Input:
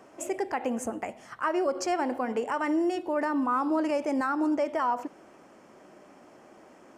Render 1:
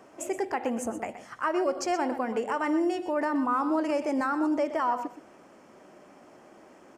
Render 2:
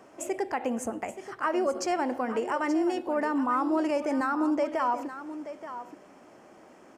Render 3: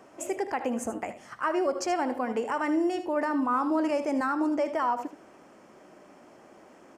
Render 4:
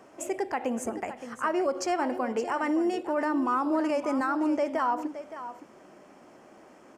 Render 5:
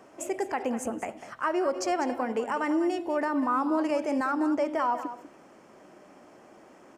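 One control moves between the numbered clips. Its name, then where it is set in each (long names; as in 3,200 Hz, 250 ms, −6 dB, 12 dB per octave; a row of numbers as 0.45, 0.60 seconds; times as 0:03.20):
single-tap delay, delay time: 123, 878, 77, 568, 197 milliseconds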